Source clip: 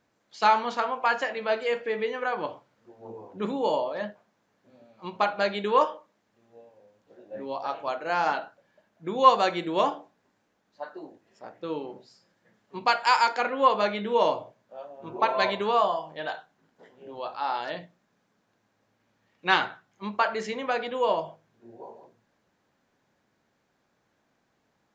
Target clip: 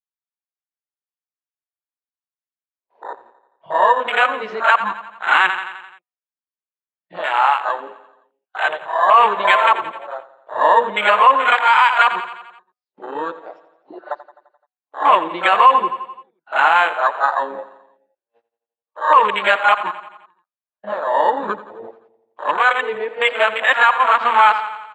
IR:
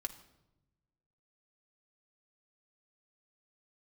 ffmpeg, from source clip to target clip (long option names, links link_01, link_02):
-filter_complex "[0:a]areverse,lowpass=frequency=3100:width=0.5412,lowpass=frequency=3100:width=1.3066,asplit=2[link_01][link_02];[link_02]acompressor=threshold=-35dB:ratio=6,volume=-2dB[link_03];[link_01][link_03]amix=inputs=2:normalize=0,equalizer=frequency=1100:width=1.6:gain=6.5,bandreject=frequency=246.5:width_type=h:width=4,bandreject=frequency=493:width_type=h:width=4,bandreject=frequency=739.5:width_type=h:width=4,bandreject=frequency=986:width_type=h:width=4,bandreject=frequency=1232.5:width_type=h:width=4,agate=range=-37dB:threshold=-42dB:ratio=16:detection=peak,afwtdn=0.0355,aderivative,aecho=1:1:86|172|258|344|430|516:0.158|0.0919|0.0533|0.0309|0.0179|0.0104,alimiter=level_in=26.5dB:limit=-1dB:release=50:level=0:latency=1,volume=-1dB"